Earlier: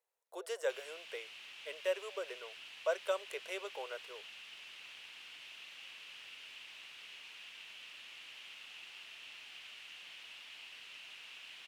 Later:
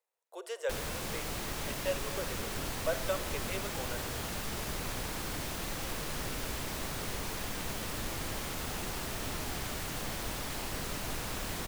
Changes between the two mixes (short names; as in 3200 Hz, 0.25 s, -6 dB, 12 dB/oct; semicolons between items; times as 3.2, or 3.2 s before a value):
background: remove band-pass 2800 Hz, Q 4.7; reverb: on, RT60 2.9 s